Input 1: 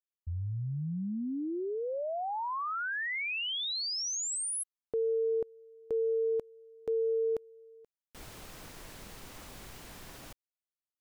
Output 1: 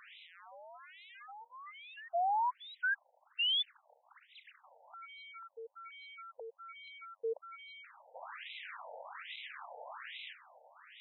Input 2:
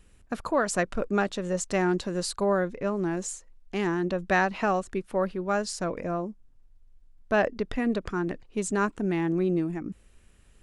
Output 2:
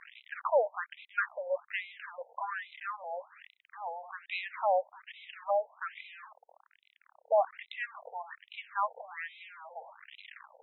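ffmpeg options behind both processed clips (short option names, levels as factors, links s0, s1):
-af "aeval=exprs='val(0)+0.5*0.0211*sgn(val(0))':c=same,afftfilt=real='re*between(b*sr/1024,640*pow(2900/640,0.5+0.5*sin(2*PI*1.2*pts/sr))/1.41,640*pow(2900/640,0.5+0.5*sin(2*PI*1.2*pts/sr))*1.41)':imag='im*between(b*sr/1024,640*pow(2900/640,0.5+0.5*sin(2*PI*1.2*pts/sr))/1.41,640*pow(2900/640,0.5+0.5*sin(2*PI*1.2*pts/sr))*1.41)':win_size=1024:overlap=0.75"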